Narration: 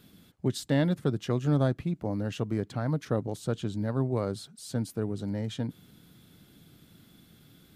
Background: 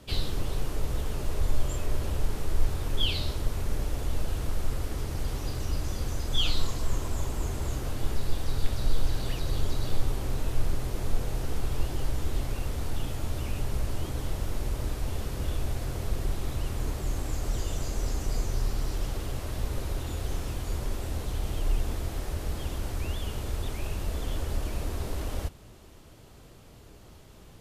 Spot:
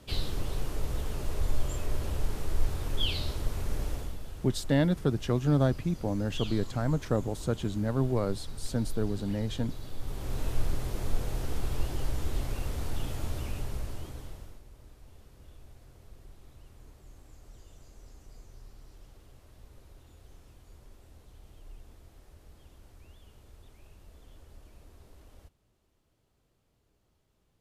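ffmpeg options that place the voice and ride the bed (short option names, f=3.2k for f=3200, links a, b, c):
-filter_complex "[0:a]adelay=4000,volume=0.5dB[a];[1:a]volume=7.5dB,afade=t=out:st=3.91:d=0.26:silence=0.334965,afade=t=in:st=9.97:d=0.47:silence=0.316228,afade=t=out:st=13.25:d=1.37:silence=0.1[b];[a][b]amix=inputs=2:normalize=0"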